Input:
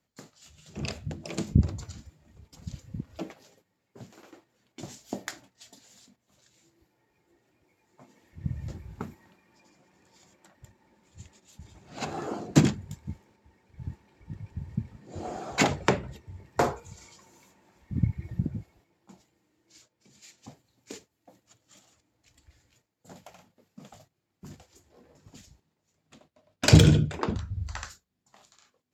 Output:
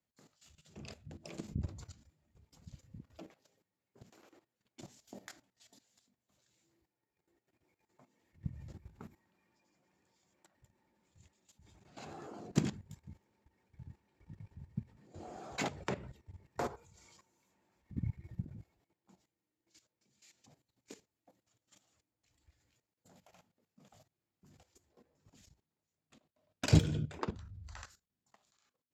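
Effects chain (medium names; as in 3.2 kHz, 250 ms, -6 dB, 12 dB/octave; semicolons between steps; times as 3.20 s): level held to a coarse grid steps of 14 dB; trim -6.5 dB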